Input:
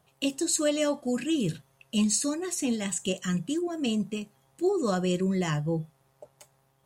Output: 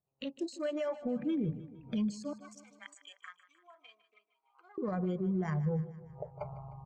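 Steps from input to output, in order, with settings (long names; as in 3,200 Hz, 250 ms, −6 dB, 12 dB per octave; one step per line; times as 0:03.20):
adaptive Wiener filter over 25 samples
camcorder AGC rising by 53 dB per second
noise reduction from a noise print of the clip's start 19 dB
0:02.33–0:04.78: high-pass filter 1,200 Hz 24 dB per octave
brickwall limiter −21 dBFS, peak gain reduction 9.5 dB
high-frequency loss of the air 190 metres
repeating echo 153 ms, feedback 57%, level −16 dB
level −5 dB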